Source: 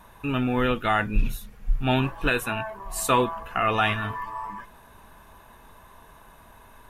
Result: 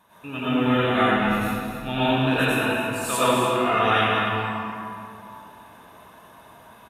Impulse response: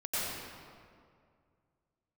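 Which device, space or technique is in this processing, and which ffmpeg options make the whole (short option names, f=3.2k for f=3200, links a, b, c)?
stadium PA: -filter_complex "[0:a]highpass=130,equalizer=f=3.3k:t=o:w=0.32:g=5,aecho=1:1:221.6|282.8:0.282|0.282[a];[1:a]atrim=start_sample=2205[b];[a][b]afir=irnorm=-1:irlink=0,volume=-3.5dB"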